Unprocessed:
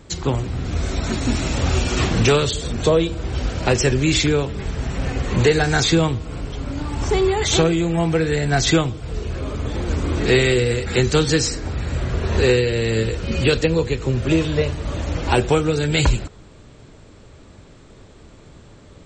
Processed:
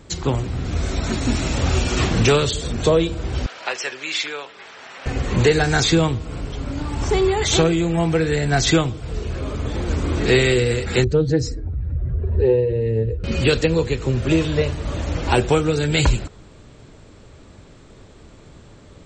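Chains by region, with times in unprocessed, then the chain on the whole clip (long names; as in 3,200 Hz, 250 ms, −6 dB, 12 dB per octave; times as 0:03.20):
0:03.46–0:05.06: high-pass filter 940 Hz + high-frequency loss of the air 110 metres
0:11.04–0:13.24: expanding power law on the bin magnitudes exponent 1.9 + low-pass filter 2,400 Hz 6 dB per octave + highs frequency-modulated by the lows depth 0.15 ms
whole clip: no processing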